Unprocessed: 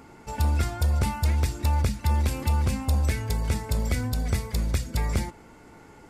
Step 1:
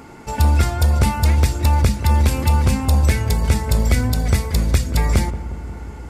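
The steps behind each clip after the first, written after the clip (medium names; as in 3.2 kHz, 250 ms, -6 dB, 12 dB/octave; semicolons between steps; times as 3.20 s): filtered feedback delay 179 ms, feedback 78%, low-pass 1 kHz, level -13.5 dB; trim +8.5 dB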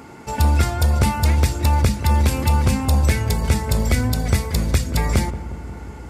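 high-pass 61 Hz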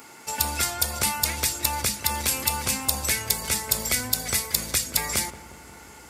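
tilt EQ +4 dB/octave; trim -5 dB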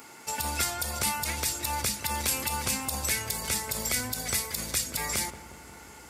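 peak limiter -12 dBFS, peak gain reduction 10.5 dB; trim -2 dB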